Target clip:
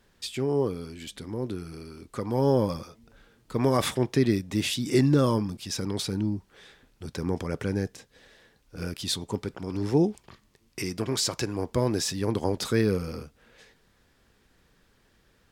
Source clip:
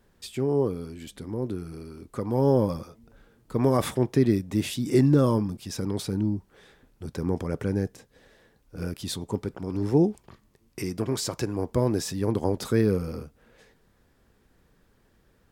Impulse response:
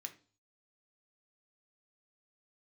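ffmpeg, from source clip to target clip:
-af "equalizer=frequency=3800:width=0.4:gain=8,volume=-2dB"

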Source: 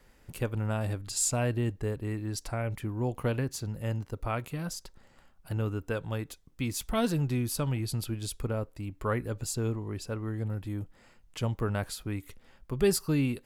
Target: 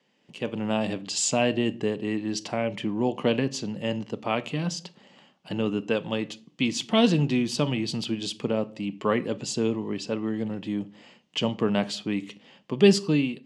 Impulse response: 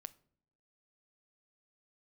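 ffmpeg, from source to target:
-filter_complex "[0:a]highpass=frequency=170:width=0.5412,highpass=frequency=170:width=1.3066,equalizer=frequency=200:width_type=q:width=4:gain=6,equalizer=frequency=1400:width_type=q:width=4:gain=-9,equalizer=frequency=3000:width_type=q:width=4:gain=10,lowpass=frequency=6600:width=0.5412,lowpass=frequency=6600:width=1.3066[link_01];[1:a]atrim=start_sample=2205,afade=type=out:start_time=0.32:duration=0.01,atrim=end_sample=14553[link_02];[link_01][link_02]afir=irnorm=-1:irlink=0,dynaudnorm=framelen=130:gausssize=7:maxgain=13dB"

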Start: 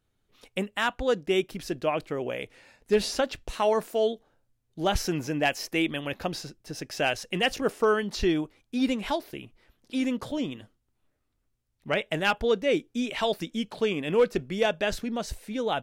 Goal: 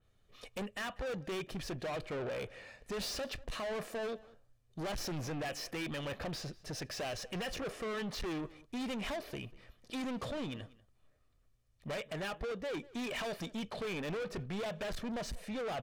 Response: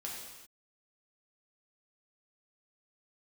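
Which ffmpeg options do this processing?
-filter_complex "[0:a]highshelf=frequency=11000:gain=-9.5,aecho=1:1:1.7:0.41,asettb=1/sr,asplit=3[link_01][link_02][link_03];[link_01]atrim=end=10.294[link_04];[link_02]atrim=start=10.29:end=12.74,asetpts=PTS-STARTPTS,afade=type=in:duration=0.004:curve=qsin,afade=type=out:start_time=2.446:duration=0.004:curve=qsin,acompressor=threshold=-28dB:ratio=6[link_05];[link_03]atrim=start=12.736[link_06];[link_04][link_05]acrossfade=duration=0.004:curve1=hsin:curve2=qsin[link_07];[link_07][link_06]acrossfade=duration=0.004:curve1=qsin:curve2=hsin,alimiter=limit=-20dB:level=0:latency=1:release=90,acontrast=70,asoftclip=type=tanh:threshold=-31.5dB,asplit=2[link_08][link_09];[link_09]adelay=192.4,volume=-21dB,highshelf=frequency=4000:gain=-4.33[link_10];[link_08][link_10]amix=inputs=2:normalize=0,adynamicequalizer=threshold=0.00282:dfrequency=3800:dqfactor=0.7:tfrequency=3800:tqfactor=0.7:attack=5:release=100:ratio=0.375:range=2.5:mode=cutabove:tftype=highshelf,volume=-4.5dB"

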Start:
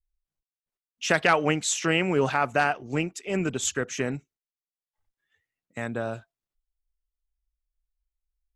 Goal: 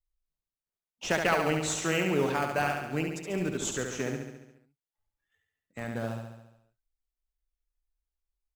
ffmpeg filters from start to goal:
ffmpeg -i in.wav -filter_complex "[0:a]asplit=2[link_01][link_02];[link_02]acrusher=samples=17:mix=1:aa=0.000001:lfo=1:lforange=17:lforate=0.89,volume=-10dB[link_03];[link_01][link_03]amix=inputs=2:normalize=0,aecho=1:1:70|140|210|280|350|420|490|560:0.562|0.337|0.202|0.121|0.0729|0.0437|0.0262|0.0157,volume=-7dB" out.wav

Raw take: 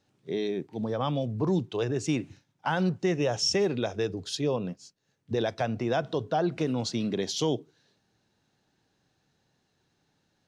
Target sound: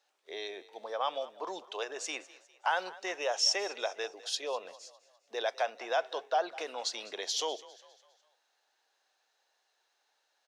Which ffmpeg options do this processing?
ffmpeg -i in.wav -filter_complex "[0:a]highpass=frequency=580:width=0.5412,highpass=frequency=580:width=1.3066,asplit=2[link_01][link_02];[link_02]asplit=4[link_03][link_04][link_05][link_06];[link_03]adelay=202,afreqshift=32,volume=-19dB[link_07];[link_04]adelay=404,afreqshift=64,volume=-25.9dB[link_08];[link_05]adelay=606,afreqshift=96,volume=-32.9dB[link_09];[link_06]adelay=808,afreqshift=128,volume=-39.8dB[link_10];[link_07][link_08][link_09][link_10]amix=inputs=4:normalize=0[link_11];[link_01][link_11]amix=inputs=2:normalize=0" out.wav

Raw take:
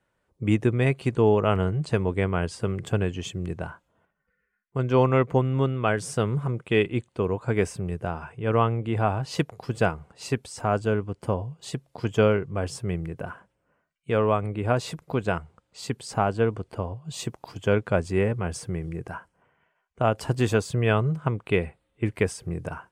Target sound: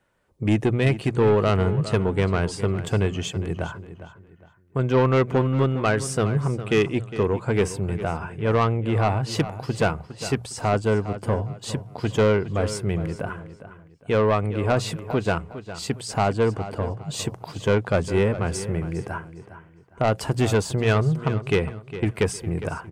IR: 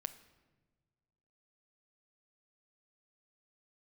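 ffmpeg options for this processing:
-filter_complex "[0:a]asoftclip=type=tanh:threshold=-18dB,bandreject=frequency=60:width_type=h:width=6,bandreject=frequency=120:width_type=h:width=6,bandreject=frequency=180:width_type=h:width=6,asplit=2[link_01][link_02];[link_02]adelay=408,lowpass=frequency=4900:poles=1,volume=-13dB,asplit=2[link_03][link_04];[link_04]adelay=408,lowpass=frequency=4900:poles=1,volume=0.31,asplit=2[link_05][link_06];[link_06]adelay=408,lowpass=frequency=4900:poles=1,volume=0.31[link_07];[link_01][link_03][link_05][link_07]amix=inputs=4:normalize=0,volume=5dB"

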